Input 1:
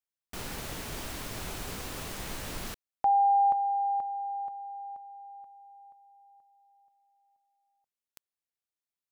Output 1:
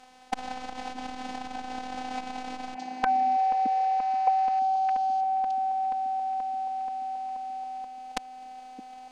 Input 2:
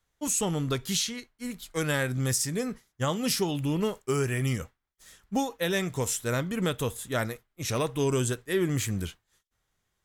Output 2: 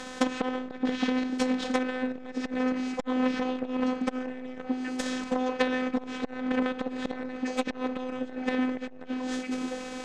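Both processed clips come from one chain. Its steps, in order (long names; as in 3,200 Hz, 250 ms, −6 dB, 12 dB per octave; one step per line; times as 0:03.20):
compressor on every frequency bin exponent 0.4
high-pass filter 86 Hz 6 dB per octave
treble cut that deepens with the level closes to 2,500 Hz, closed at −21.5 dBFS
downward compressor 3 to 1, threshold −30 dBFS
transient designer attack +10 dB, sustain −2 dB
phases set to zero 255 Hz
high-frequency loss of the air 93 metres
echo through a band-pass that steps 616 ms, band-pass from 280 Hz, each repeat 1.4 octaves, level −3.5 dB
saturating transformer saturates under 1,500 Hz
level +6 dB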